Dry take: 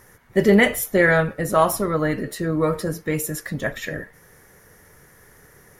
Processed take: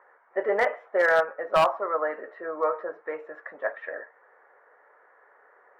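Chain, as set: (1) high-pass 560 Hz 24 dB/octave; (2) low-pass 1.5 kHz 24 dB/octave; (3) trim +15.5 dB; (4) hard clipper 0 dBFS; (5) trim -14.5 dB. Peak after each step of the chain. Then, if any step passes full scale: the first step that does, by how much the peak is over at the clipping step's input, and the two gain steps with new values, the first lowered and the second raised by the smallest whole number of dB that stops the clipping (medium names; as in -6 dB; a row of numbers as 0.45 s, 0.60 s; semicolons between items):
-5.5 dBFS, -6.0 dBFS, +9.5 dBFS, 0.0 dBFS, -14.5 dBFS; step 3, 9.5 dB; step 3 +5.5 dB, step 5 -4.5 dB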